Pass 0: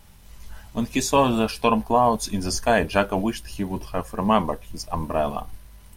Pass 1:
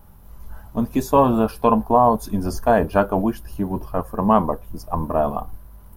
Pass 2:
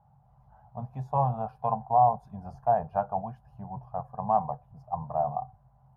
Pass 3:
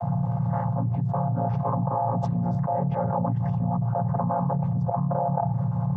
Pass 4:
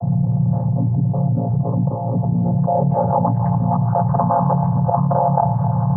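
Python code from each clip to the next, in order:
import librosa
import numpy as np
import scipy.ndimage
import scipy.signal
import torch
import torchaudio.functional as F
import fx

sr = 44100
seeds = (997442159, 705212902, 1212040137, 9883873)

y1 = fx.band_shelf(x, sr, hz=4100.0, db=-14.5, octaves=2.6)
y1 = y1 * librosa.db_to_amplitude(3.5)
y2 = fx.double_bandpass(y1, sr, hz=320.0, octaves=2.5)
y3 = fx.chord_vocoder(y2, sr, chord='minor triad', root=46)
y3 = fx.env_flatten(y3, sr, amount_pct=100)
y3 = y3 * librosa.db_to_amplitude(-5.0)
y4 = fx.filter_sweep_lowpass(y3, sr, from_hz=390.0, to_hz=1200.0, start_s=2.14, end_s=3.53, q=1.3)
y4 = fx.echo_feedback(y4, sr, ms=268, feedback_pct=47, wet_db=-12.5)
y4 = y4 * librosa.db_to_amplitude(7.0)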